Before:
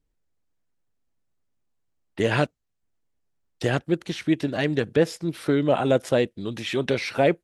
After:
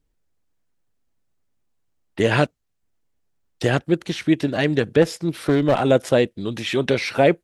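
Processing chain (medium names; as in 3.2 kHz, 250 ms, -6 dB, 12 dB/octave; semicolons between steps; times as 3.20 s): 5.02–5.83 s: one-sided clip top -21 dBFS; trim +4 dB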